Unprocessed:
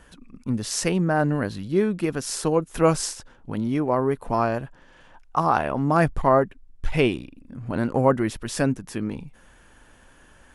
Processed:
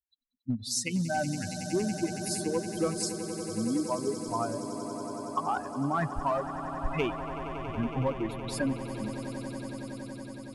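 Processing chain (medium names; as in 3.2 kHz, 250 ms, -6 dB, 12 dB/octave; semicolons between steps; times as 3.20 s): expander on every frequency bin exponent 3; in parallel at -5 dB: overload inside the chain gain 23.5 dB; on the sum: compression, threshold -27 dBFS, peak gain reduction 11.5 dB; echo with a slow build-up 93 ms, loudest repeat 8, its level -15 dB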